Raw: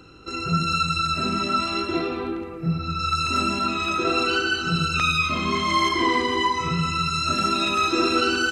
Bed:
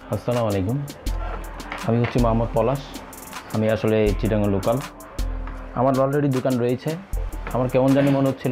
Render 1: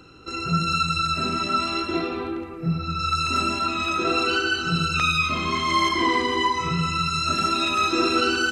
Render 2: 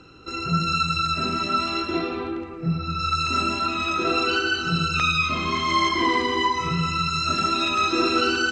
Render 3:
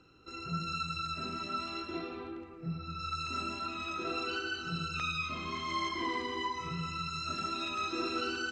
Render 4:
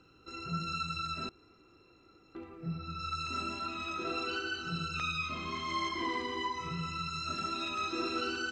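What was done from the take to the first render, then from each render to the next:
de-hum 50 Hz, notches 12
LPF 7400 Hz 24 dB/oct
gain -13.5 dB
1.29–2.35 room tone

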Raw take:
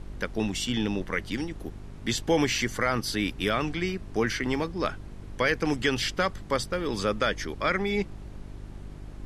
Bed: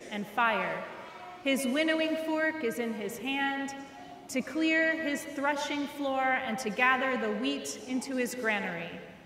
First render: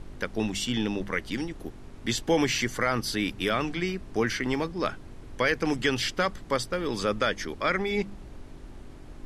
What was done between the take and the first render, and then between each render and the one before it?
de-hum 50 Hz, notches 4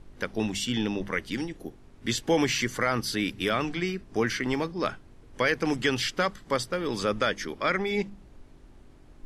noise print and reduce 8 dB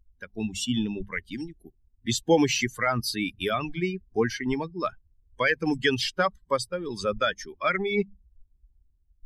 per-bin expansion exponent 2; AGC gain up to 5.5 dB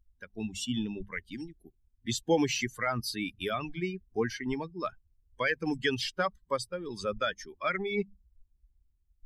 gain -5.5 dB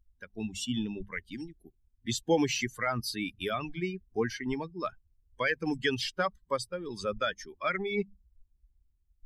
nothing audible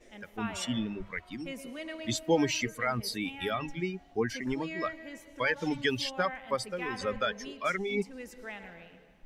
add bed -13 dB

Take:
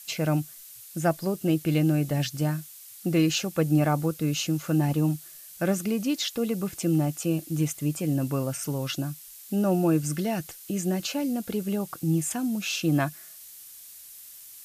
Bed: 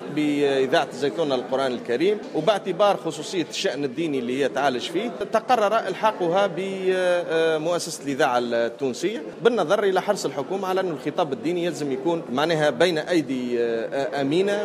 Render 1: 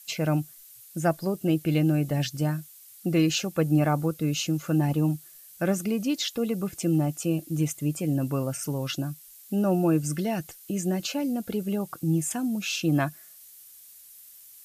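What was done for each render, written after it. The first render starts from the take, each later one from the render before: denoiser 6 dB, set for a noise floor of -47 dBFS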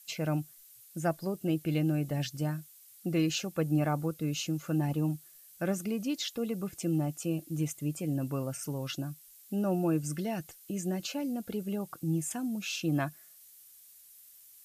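gain -6 dB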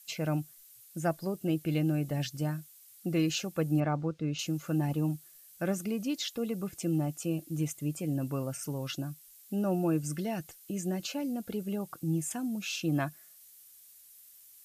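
3.8–4.39 air absorption 140 m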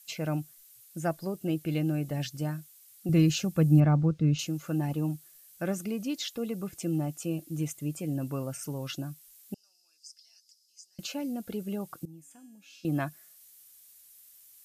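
3.09–4.45 tone controls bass +12 dB, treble +2 dB; 9.54–10.99 ladder band-pass 5200 Hz, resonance 85%; 12.05–12.85 resonator 280 Hz, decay 1.1 s, mix 90%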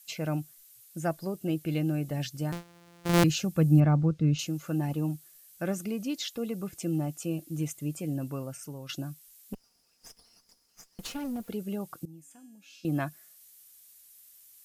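2.52–3.24 sample sorter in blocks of 256 samples; 8.06–8.89 fade out, to -7.5 dB; 9.53–11.49 minimum comb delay 4.3 ms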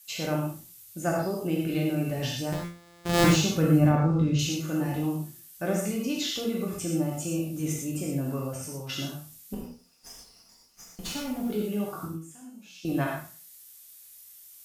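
spectral trails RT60 0.39 s; non-linear reverb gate 0.14 s flat, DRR -1 dB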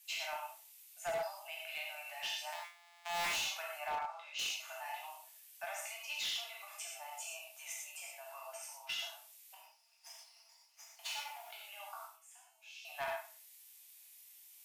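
rippled Chebyshev high-pass 630 Hz, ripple 9 dB; hard clip -33.5 dBFS, distortion -9 dB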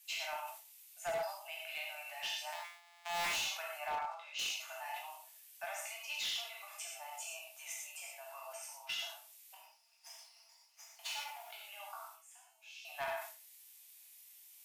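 sustainer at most 93 dB/s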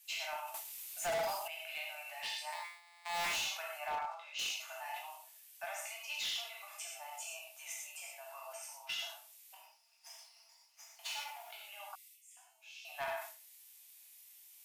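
0.54–1.48 sample leveller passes 3; 2.23–3.17 ripple EQ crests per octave 0.95, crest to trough 8 dB; 11.95–12.37 Chebyshev high-pass 1900 Hz, order 8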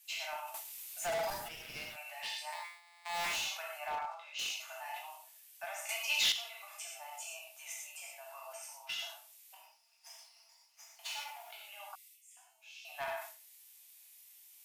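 1.3–1.96 minimum comb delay 8.4 ms; 5.89–6.32 gain +9 dB

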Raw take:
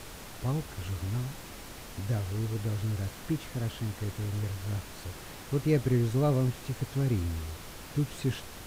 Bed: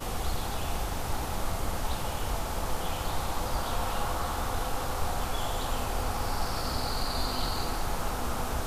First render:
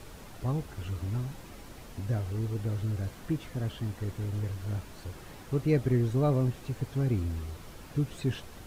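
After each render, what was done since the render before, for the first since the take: denoiser 7 dB, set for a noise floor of -45 dBFS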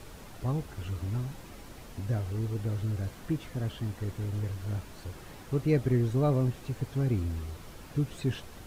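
nothing audible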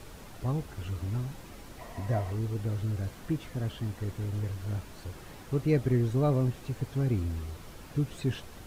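1.79–2.35 small resonant body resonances 690/990/1900 Hz, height 13 dB, ringing for 25 ms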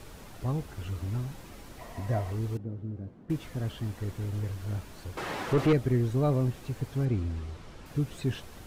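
2.57–3.3 band-pass 240 Hz, Q 1.1; 5.17–5.73 overdrive pedal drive 26 dB, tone 1700 Hz, clips at -14.5 dBFS; 7.05–7.86 air absorption 65 m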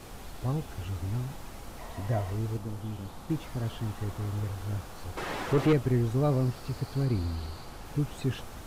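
add bed -15 dB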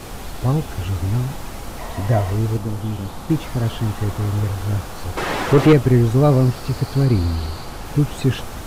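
gain +12 dB

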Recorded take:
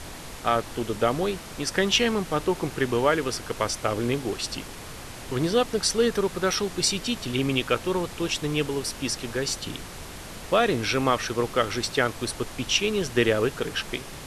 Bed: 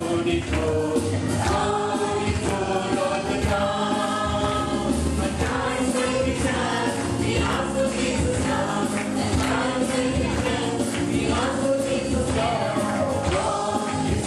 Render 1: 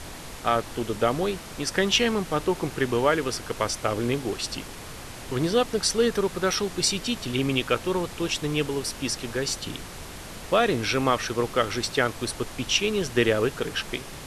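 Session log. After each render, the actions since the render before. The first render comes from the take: nothing audible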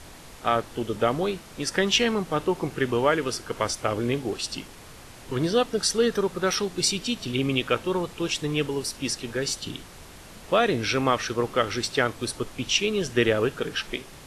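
noise print and reduce 6 dB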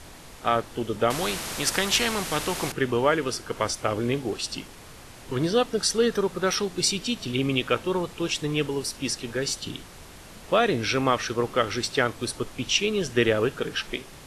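1.1–2.72 spectral compressor 2:1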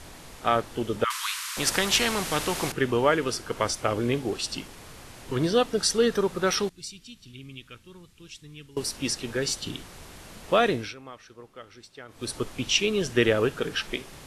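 1.04–1.57 steep high-pass 970 Hz 96 dB/oct; 6.69–8.77 passive tone stack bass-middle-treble 6-0-2; 10.67–12.36 dip -21 dB, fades 0.28 s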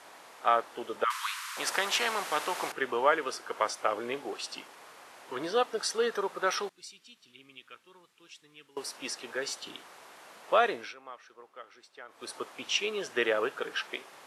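HPF 1000 Hz 12 dB/oct; tilt shelf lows +9.5 dB, about 1400 Hz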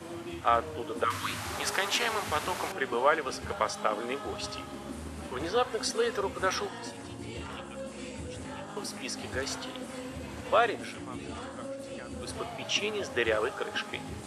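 add bed -17.5 dB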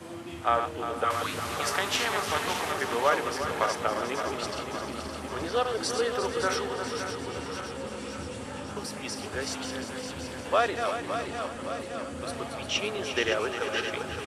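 regenerating reverse delay 0.282 s, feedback 78%, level -7 dB; echo 0.352 s -10 dB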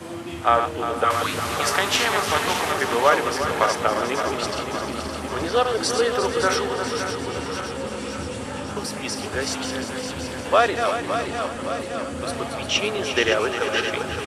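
gain +7 dB

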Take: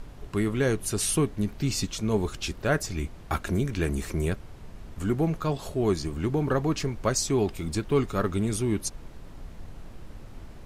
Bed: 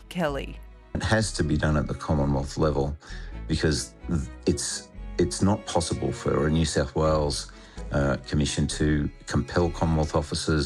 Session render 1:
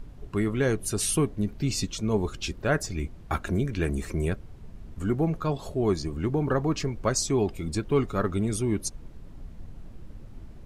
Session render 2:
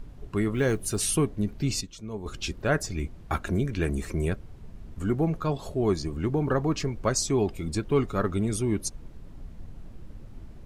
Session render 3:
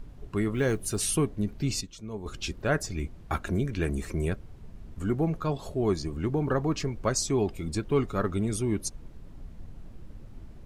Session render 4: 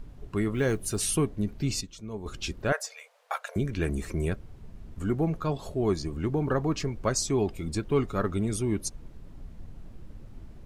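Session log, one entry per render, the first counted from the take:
denoiser 8 dB, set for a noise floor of -44 dBFS
0.54–1.11 block floating point 7-bit; 1.81–2.26 gain -10.5 dB
gain -1.5 dB
2.72–3.56 brick-wall FIR high-pass 450 Hz

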